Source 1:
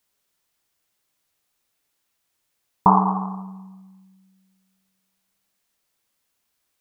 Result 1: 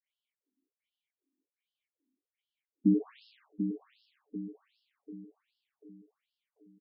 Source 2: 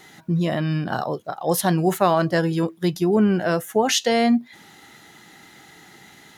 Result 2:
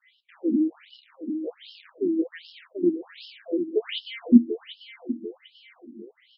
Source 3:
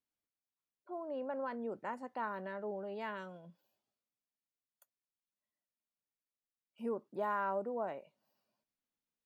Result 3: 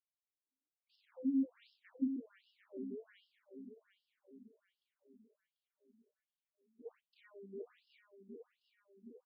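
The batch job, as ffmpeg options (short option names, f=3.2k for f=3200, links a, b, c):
-filter_complex "[0:a]asplit=3[a][b][c];[a]bandpass=f=270:t=q:w=8,volume=0dB[d];[b]bandpass=f=2.29k:t=q:w=8,volume=-6dB[e];[c]bandpass=f=3.01k:t=q:w=8,volume=-9dB[f];[d][e][f]amix=inputs=3:normalize=0,lowshelf=f=640:t=q:w=1.5:g=11,acrusher=bits=6:mode=log:mix=0:aa=0.000001,asplit=2[g][h];[h]aecho=0:1:741|1482|2223|2964|3705|4446:0.376|0.184|0.0902|0.0442|0.0217|0.0106[i];[g][i]amix=inputs=2:normalize=0,afftfilt=real='re*between(b*sr/1024,260*pow(3900/260,0.5+0.5*sin(2*PI*1.3*pts/sr))/1.41,260*pow(3900/260,0.5+0.5*sin(2*PI*1.3*pts/sr))*1.41)':imag='im*between(b*sr/1024,260*pow(3900/260,0.5+0.5*sin(2*PI*1.3*pts/sr))/1.41,260*pow(3900/260,0.5+0.5*sin(2*PI*1.3*pts/sr))*1.41)':win_size=1024:overlap=0.75,volume=4dB"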